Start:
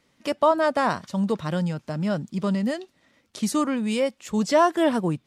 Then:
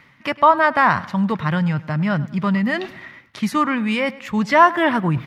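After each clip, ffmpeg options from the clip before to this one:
-filter_complex "[0:a]equalizer=f=125:t=o:w=1:g=10,equalizer=f=500:t=o:w=1:g=-5,equalizer=f=1k:t=o:w=1:g=7,equalizer=f=2k:t=o:w=1:g=12,equalizer=f=8k:t=o:w=1:g=-11,areverse,acompressor=mode=upward:threshold=-19dB:ratio=2.5,areverse,asplit=2[a][b];[b]adelay=103,lowpass=f=4.6k:p=1,volume=-19dB,asplit=2[c][d];[d]adelay=103,lowpass=f=4.6k:p=1,volume=0.45,asplit=2[e][f];[f]adelay=103,lowpass=f=4.6k:p=1,volume=0.45,asplit=2[g][h];[h]adelay=103,lowpass=f=4.6k:p=1,volume=0.45[i];[a][c][e][g][i]amix=inputs=5:normalize=0,volume=1dB"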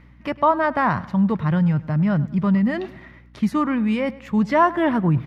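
-af "tiltshelf=f=850:g=6,aeval=exprs='val(0)+0.00631*(sin(2*PI*60*n/s)+sin(2*PI*2*60*n/s)/2+sin(2*PI*3*60*n/s)/3+sin(2*PI*4*60*n/s)/4+sin(2*PI*5*60*n/s)/5)':c=same,volume=-4dB"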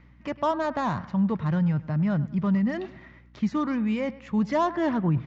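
-filter_complex "[0:a]acrossover=split=940[a][b];[b]asoftclip=type=tanh:threshold=-27.5dB[c];[a][c]amix=inputs=2:normalize=0,aresample=16000,aresample=44100,volume=-5dB"

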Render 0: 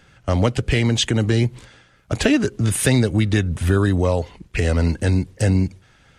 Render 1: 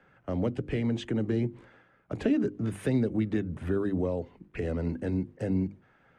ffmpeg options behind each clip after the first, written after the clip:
-filter_complex "[0:a]acrossover=split=160 2100:gain=0.224 1 0.0708[a][b][c];[a][b][c]amix=inputs=3:normalize=0,bandreject=f=50:t=h:w=6,bandreject=f=100:t=h:w=6,bandreject=f=150:t=h:w=6,bandreject=f=200:t=h:w=6,bandreject=f=250:t=h:w=6,bandreject=f=300:t=h:w=6,bandreject=f=350:t=h:w=6,acrossover=split=480|3000[d][e][f];[e]acompressor=threshold=-47dB:ratio=2[g];[d][g][f]amix=inputs=3:normalize=0,volume=-5dB"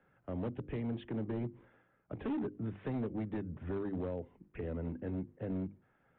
-af "highshelf=f=2.6k:g=-10,aresample=8000,volume=24.5dB,asoftclip=hard,volume=-24.5dB,aresample=44100,volume=-7.5dB"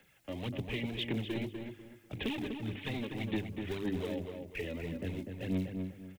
-filter_complex "[0:a]aphaser=in_gain=1:out_gain=1:delay=3.6:decay=0.55:speed=1.8:type=sinusoidal,aexciter=amount=7.5:drive=7.6:freq=2.1k,asplit=2[a][b];[b]adelay=247,lowpass=f=2k:p=1,volume=-5dB,asplit=2[c][d];[d]adelay=247,lowpass=f=2k:p=1,volume=0.3,asplit=2[e][f];[f]adelay=247,lowpass=f=2k:p=1,volume=0.3,asplit=2[g][h];[h]adelay=247,lowpass=f=2k:p=1,volume=0.3[i];[c][e][g][i]amix=inputs=4:normalize=0[j];[a][j]amix=inputs=2:normalize=0,volume=-2dB"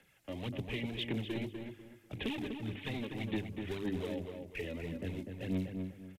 -af "aresample=32000,aresample=44100,volume=-1.5dB"

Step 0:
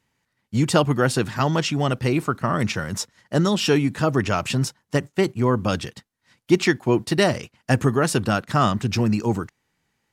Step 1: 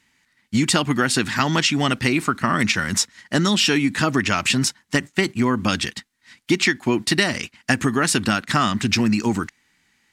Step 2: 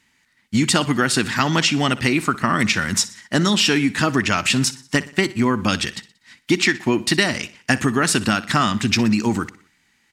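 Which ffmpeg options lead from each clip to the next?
-af "equalizer=f=125:t=o:w=1:g=-6,equalizer=f=250:t=o:w=1:g=6,equalizer=f=500:t=o:w=1:g=-7,equalizer=f=2k:t=o:w=1:g=8,equalizer=f=4k:t=o:w=1:g=5,equalizer=f=8k:t=o:w=1:g=6,acompressor=threshold=-19dB:ratio=6,volume=4dB"
-af "aecho=1:1:61|122|183|244:0.126|0.0604|0.029|0.0139,volume=1dB"

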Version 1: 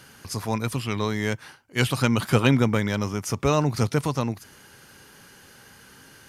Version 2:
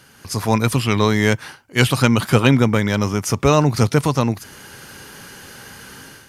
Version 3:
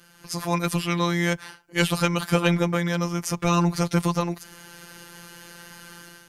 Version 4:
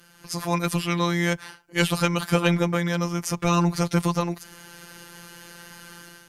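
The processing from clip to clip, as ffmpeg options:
-af "dynaudnorm=f=130:g=5:m=11dB"
-af "afftfilt=real='hypot(re,im)*cos(PI*b)':imag='0':win_size=1024:overlap=0.75,volume=-2dB"
-ar 48000 -c:a libmp3lame -b:a 320k

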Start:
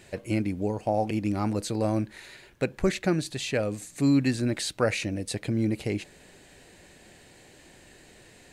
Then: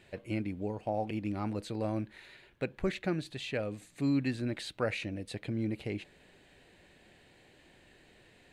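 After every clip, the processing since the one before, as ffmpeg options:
-af "highshelf=f=4.5k:t=q:w=1.5:g=-7,volume=-7.5dB"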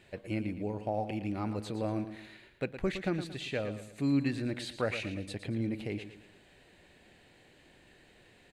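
-af "aecho=1:1:114|228|342|456:0.282|0.113|0.0451|0.018"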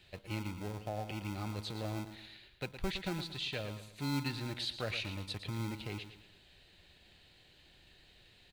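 -filter_complex "[0:a]equalizer=f=125:t=o:w=1:g=-4,equalizer=f=250:t=o:w=1:g=-10,equalizer=f=500:t=o:w=1:g=-6,equalizer=f=1k:t=o:w=1:g=-10,equalizer=f=2k:t=o:w=1:g=-7,equalizer=f=4k:t=o:w=1:g=6,equalizer=f=8k:t=o:w=1:g=-10,acrossover=split=390|1200[a][b][c];[a]acrusher=samples=38:mix=1:aa=0.000001[d];[d][b][c]amix=inputs=3:normalize=0,volume=3.5dB"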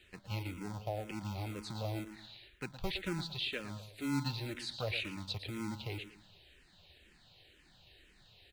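-filter_complex "[0:a]asplit=2[a][b];[b]afreqshift=-2[c];[a][c]amix=inputs=2:normalize=1,volume=2.5dB"

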